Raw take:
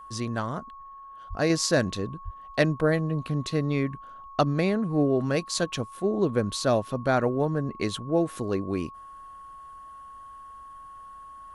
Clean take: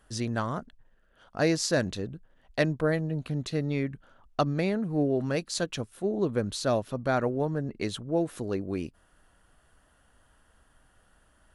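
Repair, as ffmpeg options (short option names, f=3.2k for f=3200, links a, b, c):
-filter_complex "[0:a]bandreject=f=1.1k:w=30,asplit=3[a][b][c];[a]afade=t=out:st=1.29:d=0.02[d];[b]highpass=f=140:w=0.5412,highpass=f=140:w=1.3066,afade=t=in:st=1.29:d=0.02,afade=t=out:st=1.41:d=0.02[e];[c]afade=t=in:st=1.41:d=0.02[f];[d][e][f]amix=inputs=3:normalize=0,asplit=3[g][h][i];[g]afade=t=out:st=2.24:d=0.02[j];[h]highpass=f=140:w=0.5412,highpass=f=140:w=1.3066,afade=t=in:st=2.24:d=0.02,afade=t=out:st=2.36:d=0.02[k];[i]afade=t=in:st=2.36:d=0.02[l];[j][k][l]amix=inputs=3:normalize=0,asetnsamples=n=441:p=0,asendcmd='1.5 volume volume -3dB',volume=0dB"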